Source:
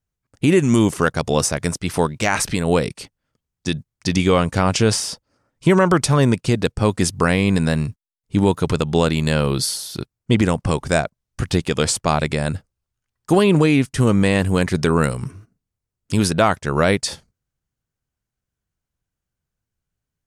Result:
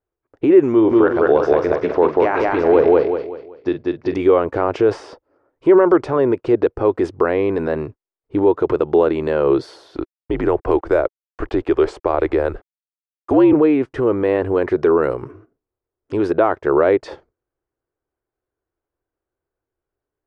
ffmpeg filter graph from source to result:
-filter_complex "[0:a]asettb=1/sr,asplit=3[a][b][c];[a]atrim=end=0.724[d];[b]atrim=start=0.72:end=4.14,asetpts=PTS-STARTPTS,afade=t=in:d=0.004:c=qsin,afade=t=out:st=3.416:d=0.004:c=qsin,lowpass=f=5.4k:w=0.5412,lowpass=f=5.4k:w=1.3066,asplit=2[e][f];[f]adelay=45,volume=-12.5dB[g];[e][g]amix=inputs=2:normalize=0,atrim=end_sample=150822,aecho=1:1:190|380|570|760:0.708|0.241|0.0818|0.0278,atrim=end_sample=150822[h];[c]atrim=start=4.136[i];[d][h]acrossfade=d=0.004:c1=hsin:c2=qsin[j];[j][i]acrossfade=d=0.004:c1=qsin:c2=hsin,asettb=1/sr,asplit=3[k][l][m];[k]atrim=end=9.964[n];[l]atrim=start=9.96:end=13.53,asetpts=PTS-STARTPTS,afade=t=in:d=0.004:c=qsin,afade=t=out:st=3.566:d=0.004:c=qsin,afreqshift=-65,acrusher=bits=7:mix=0:aa=0.5[o];[m]atrim=start=13.526[p];[n][o]acrossfade=d=0.004:c1=hsin:c2=qsin[q];[q][p]acrossfade=d=0.004:c1=qsin:c2=hsin,alimiter=limit=-10dB:level=0:latency=1:release=31,lowpass=1.3k,lowshelf=f=260:t=q:w=3:g=-10.5,volume=5dB"

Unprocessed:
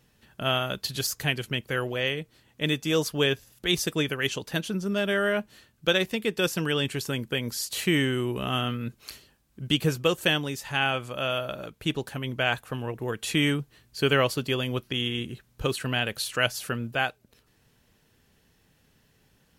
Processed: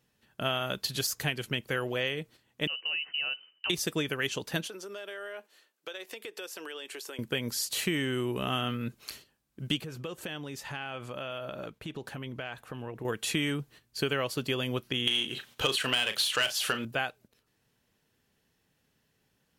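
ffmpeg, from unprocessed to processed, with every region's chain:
-filter_complex "[0:a]asettb=1/sr,asplit=3[a][b][c];[a]atrim=end=2.674[d];[b]atrim=start=2.67:end=3.7,asetpts=PTS-STARTPTS,afade=t=in:d=0.004:c=qsin,afade=t=out:st=1.026:d=0.004:c=qsin,tiltshelf=f=780:g=5,acompressor=threshold=-28dB:ratio=12:attack=3.2:release=140:knee=1:detection=peak,lowpass=f=2.6k:t=q:w=0.5098,lowpass=f=2.6k:t=q:w=0.6013,lowpass=f=2.6k:t=q:w=0.9,lowpass=f=2.6k:t=q:w=2.563,afreqshift=-3100[e];[c]atrim=start=3.696[f];[d][e]acrossfade=d=0.004:c1=hsin:c2=qsin[g];[g][f]acrossfade=d=0.004:c1=qsin:c2=hsin,asettb=1/sr,asplit=3[h][i][j];[h]atrim=end=4.674[k];[i]atrim=start=4.67:end=7.19,asetpts=PTS-STARTPTS,afade=t=in:d=0.004:c=qsin,afade=t=out:st=2.516:d=0.004:c=qsin,highpass=f=360:w=0.5412,highpass=f=360:w=1.3066,acompressor=threshold=-38dB:ratio=6:attack=3.2:release=140:knee=1:detection=peak[l];[j]atrim=start=7.186[m];[k][l]acrossfade=d=0.004:c1=hsin:c2=qsin[n];[n][m]acrossfade=d=0.004:c1=qsin:c2=hsin,asettb=1/sr,asplit=3[o][p][q];[o]atrim=end=9.814[r];[p]atrim=start=9.81:end=13.05,asetpts=PTS-STARTPTS,afade=t=in:d=0.004:c=qsin,afade=t=out:st=3.236:d=0.004:c=qsin,highshelf=f=5k:g=-8,acompressor=threshold=-33dB:ratio=12:attack=3.2:release=140:knee=1:detection=peak[s];[q]atrim=start=13.046[t];[r][s]acrossfade=d=0.004:c1=hsin:c2=qsin[u];[u][t]acrossfade=d=0.004:c1=qsin:c2=hsin,asettb=1/sr,asplit=3[v][w][x];[v]atrim=end=15.074[y];[w]atrim=start=15.07:end=16.85,asetpts=PTS-STARTPTS,afade=t=in:d=0.004:c=qsin,afade=t=out:st=1.776:d=0.004:c=qsin,equalizer=f=3.2k:t=o:w=0.56:g=8.5,asplit=2[z][aa];[aa]highpass=f=720:p=1,volume=18dB,asoftclip=type=tanh:threshold=-5dB[ab];[z][ab]amix=inputs=2:normalize=0,lowpass=f=8k:p=1,volume=-6dB,asplit=2[ac][ad];[ad]adelay=37,volume=-11dB[ae];[ac][ae]amix=inputs=2:normalize=0,atrim=end_sample=78498[af];[x]atrim=start=16.846[ag];[y][af]acrossfade=d=0.004:c1=hsin:c2=qsin[ah];[ah][ag]acrossfade=d=0.004:c1=qsin:c2=hsin,agate=range=-8dB:threshold=-50dB:ratio=16:detection=peak,lowshelf=f=80:g=-9.5,acompressor=threshold=-26dB:ratio=6"

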